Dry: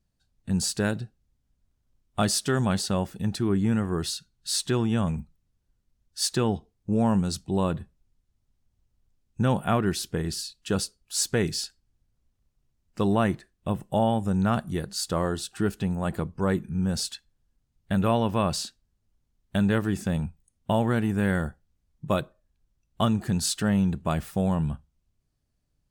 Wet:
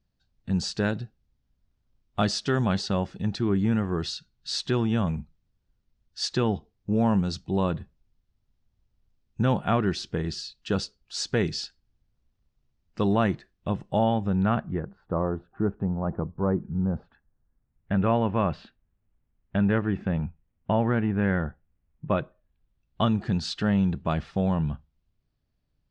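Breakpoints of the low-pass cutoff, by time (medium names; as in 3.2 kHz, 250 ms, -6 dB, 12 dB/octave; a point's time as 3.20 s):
low-pass 24 dB/octave
13.96 s 5.6 kHz
14.51 s 3.1 kHz
14.95 s 1.2 kHz
16.99 s 1.2 kHz
17.97 s 2.6 kHz
22.08 s 2.6 kHz
23.01 s 4.8 kHz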